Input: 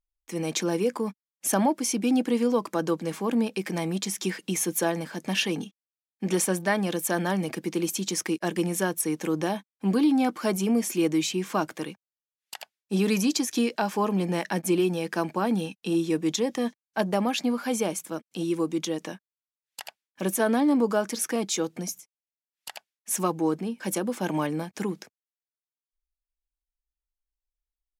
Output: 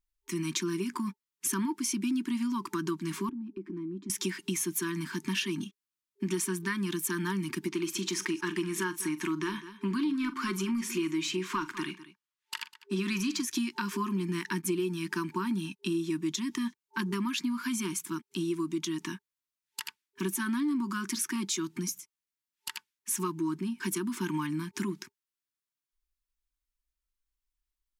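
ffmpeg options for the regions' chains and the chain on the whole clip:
-filter_complex "[0:a]asettb=1/sr,asplit=3[s0][s1][s2];[s0]atrim=end=3.294[s3];[s1]atrim=start=3.29:end=4.1,asetpts=PTS-STARTPTS,afade=t=in:d=0.004:c=qsin,afade=t=out:st=0.806:d=0.004:c=qsin,bandpass=f=290:t=q:w=2.9,acompressor=threshold=0.0158:ratio=6:attack=3.2:release=140:knee=1:detection=peak[s4];[s2]atrim=start=4.096[s5];[s3][s4]acrossfade=d=0.004:c1=hsin:c2=qsin[s6];[s6][s5]acrossfade=d=0.004:c1=qsin:c2=hsin,asettb=1/sr,asplit=3[s7][s8][s9];[s7]atrim=end=7.684[s10];[s8]atrim=start=7.68:end=13.42,asetpts=PTS-STARTPTS,afade=t=in:d=0.004:c=qsin,afade=t=out:st=5.736:d=0.004:c=qsin,asplit=2[s11][s12];[s12]highpass=f=720:p=1,volume=3.16,asoftclip=type=tanh:threshold=0.237[s13];[s11][s13]amix=inputs=2:normalize=0,lowpass=f=2700:p=1,volume=0.501,aecho=1:1:43|201:0.178|0.119,atrim=end_sample=253134[s14];[s9]atrim=start=13.416[s15];[s10][s14]acrossfade=d=0.004:c1=hsin:c2=qsin[s16];[s16][s15]acrossfade=d=0.004:c1=qsin:c2=hsin,afftfilt=real='re*(1-between(b*sr/4096,400,890))':imag='im*(1-between(b*sr/4096,400,890))':win_size=4096:overlap=0.75,acompressor=threshold=0.0224:ratio=3,volume=1.33"

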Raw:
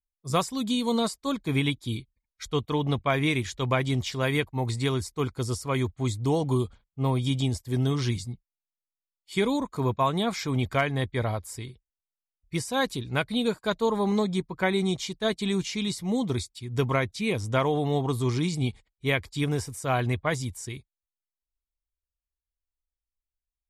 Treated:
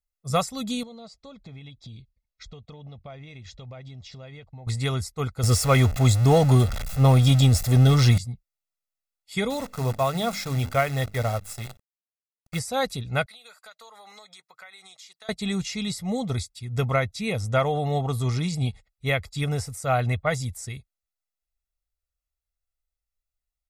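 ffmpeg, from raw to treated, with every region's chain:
-filter_complex "[0:a]asettb=1/sr,asplit=3[s0][s1][s2];[s0]atrim=end=0.834[s3];[s1]atrim=start=0.83:end=4.67,asetpts=PTS-STARTPTS,afade=t=in:d=0.004:c=qsin,afade=t=out:st=3.836:d=0.004:c=qsin,lowpass=f=5700:w=0.5412,lowpass=f=5700:w=1.3066,equalizer=f=1500:w=1.2:g=-7,acompressor=threshold=0.01:ratio=8:attack=3.2:release=140:knee=1:detection=peak[s4];[s2]atrim=start=4.666[s5];[s3][s4]acrossfade=d=0.004:c1=hsin:c2=qsin[s6];[s6][s5]acrossfade=d=0.004:c1=qsin:c2=hsin,asettb=1/sr,asplit=3[s7][s8][s9];[s7]atrim=end=5.434[s10];[s8]atrim=start=5.43:end=8.18,asetpts=PTS-STARTPTS,afade=t=in:d=0.004:c=qsin,afade=t=out:st=2.746:d=0.004:c=qsin,aeval=exprs='val(0)+0.5*0.02*sgn(val(0))':c=same,acontrast=69[s11];[s9]atrim=start=8.176[s12];[s10][s11]acrossfade=d=0.004:c1=hsin:c2=qsin[s13];[s13][s12]acrossfade=d=0.004:c1=qsin:c2=hsin,asettb=1/sr,asplit=3[s14][s15][s16];[s14]atrim=end=9.504[s17];[s15]atrim=start=9.5:end=12.59,asetpts=PTS-STARTPTS,afade=t=in:d=0.004:c=qsin,afade=t=out:st=3.086:d=0.004:c=qsin,bandreject=f=50:t=h:w=6,bandreject=f=100:t=h:w=6,bandreject=f=150:t=h:w=6,bandreject=f=200:t=h:w=6,bandreject=f=250:t=h:w=6,bandreject=f=300:t=h:w=6,bandreject=f=350:t=h:w=6,acrusher=bits=7:dc=4:mix=0:aa=0.000001[s18];[s16]atrim=start=12.586[s19];[s17][s18]acrossfade=d=0.004:c1=hsin:c2=qsin[s20];[s20][s19]acrossfade=d=0.004:c1=qsin:c2=hsin,asettb=1/sr,asplit=3[s21][s22][s23];[s21]atrim=end=13.264[s24];[s22]atrim=start=13.26:end=15.29,asetpts=PTS-STARTPTS,afade=t=in:d=0.004:c=qsin,afade=t=out:st=2.026:d=0.004:c=qsin,highpass=1200,acompressor=threshold=0.00562:ratio=5:attack=3.2:release=140:knee=1:detection=peak[s25];[s23]atrim=start=15.286[s26];[s24][s25]acrossfade=d=0.004:c1=hsin:c2=qsin[s27];[s27][s26]acrossfade=d=0.004:c1=qsin:c2=hsin,bandreject=f=3100:w=9.6,aecho=1:1:1.5:0.67"

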